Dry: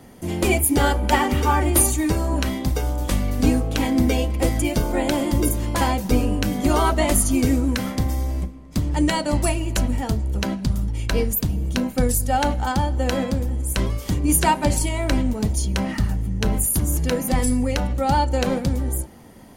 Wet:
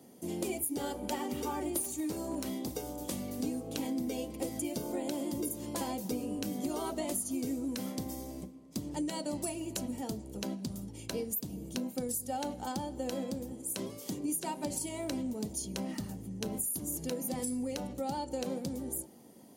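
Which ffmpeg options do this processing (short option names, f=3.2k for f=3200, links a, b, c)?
-filter_complex "[0:a]asplit=3[a][b][c];[a]afade=t=out:st=1.81:d=0.02[d];[b]aeval=exprs='0.188*(abs(mod(val(0)/0.188+3,4)-2)-1)':c=same,afade=t=in:st=1.81:d=0.02,afade=t=out:st=2.68:d=0.02[e];[c]afade=t=in:st=2.68:d=0.02[f];[d][e][f]amix=inputs=3:normalize=0,asettb=1/sr,asplit=3[g][h][i];[g]atrim=end=13.524[j];[h]atrim=start=13.52:end=14.56,asetpts=PTS-STARTPTS,afade=t=in:d=0.004:c=qsin,afade=t=out:st=1.036:d=0.004:c=qsin,highpass=130[k];[i]atrim=start=14.556[l];[j][k]acrossfade=d=0.004:c1=hsin:c2=qsin[m];[m][l]acrossfade=d=0.004:c1=qsin:c2=hsin,highpass=240,equalizer=f=1.6k:t=o:w=2.2:g=-13.5,acompressor=threshold=-27dB:ratio=5,volume=-5dB"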